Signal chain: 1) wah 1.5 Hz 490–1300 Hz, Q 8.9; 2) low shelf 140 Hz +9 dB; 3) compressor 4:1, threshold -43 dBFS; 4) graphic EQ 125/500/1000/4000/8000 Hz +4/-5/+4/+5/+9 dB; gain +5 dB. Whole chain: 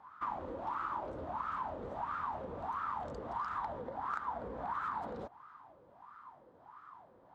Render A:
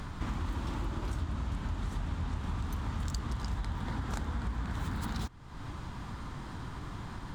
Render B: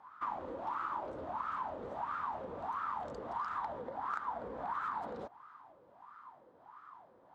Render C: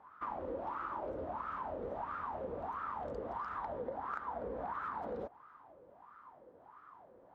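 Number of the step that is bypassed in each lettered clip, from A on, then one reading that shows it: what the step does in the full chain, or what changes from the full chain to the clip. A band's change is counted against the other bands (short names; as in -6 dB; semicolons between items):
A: 1, 125 Hz band +20.0 dB; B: 2, 125 Hz band -5.0 dB; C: 4, loudness change -1.5 LU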